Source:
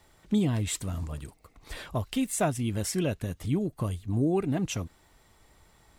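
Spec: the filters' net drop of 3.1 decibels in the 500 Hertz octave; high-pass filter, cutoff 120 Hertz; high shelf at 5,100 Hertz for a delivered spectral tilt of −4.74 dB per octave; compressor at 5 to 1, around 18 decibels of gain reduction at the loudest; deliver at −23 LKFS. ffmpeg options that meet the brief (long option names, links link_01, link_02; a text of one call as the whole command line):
ffmpeg -i in.wav -af "highpass=120,equalizer=frequency=500:width_type=o:gain=-4.5,highshelf=frequency=5100:gain=-3.5,acompressor=threshold=-44dB:ratio=5,volume=23.5dB" out.wav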